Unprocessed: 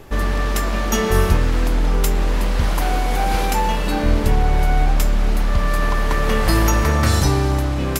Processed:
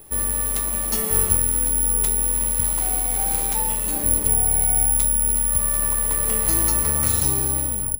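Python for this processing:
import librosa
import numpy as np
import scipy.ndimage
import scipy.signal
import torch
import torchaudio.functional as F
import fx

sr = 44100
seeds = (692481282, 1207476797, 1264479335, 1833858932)

y = fx.tape_stop_end(x, sr, length_s=0.33)
y = (np.kron(y[::4], np.eye(4)[0]) * 4)[:len(y)]
y = fx.peak_eq(y, sr, hz=1500.0, db=-4.5, octaves=0.33)
y = F.gain(torch.from_numpy(y), -10.5).numpy()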